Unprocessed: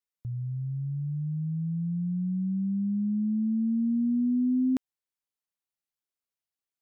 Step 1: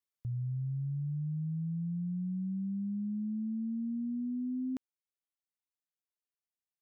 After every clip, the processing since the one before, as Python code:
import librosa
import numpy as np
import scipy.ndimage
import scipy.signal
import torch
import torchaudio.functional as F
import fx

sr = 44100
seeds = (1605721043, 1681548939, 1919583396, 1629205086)

y = fx.rider(x, sr, range_db=5, speed_s=0.5)
y = y * librosa.db_to_amplitude(-7.0)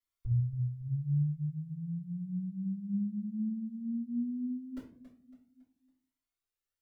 y = fx.echo_feedback(x, sr, ms=278, feedback_pct=41, wet_db=-13)
y = fx.room_shoebox(y, sr, seeds[0], volume_m3=33.0, walls='mixed', distance_m=2.3)
y = fx.comb_cascade(y, sr, direction='rising', hz=0.49)
y = y * librosa.db_to_amplitude(-6.0)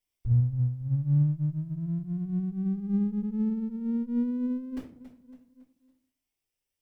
y = fx.lower_of_two(x, sr, delay_ms=0.36)
y = y * librosa.db_to_amplitude(6.5)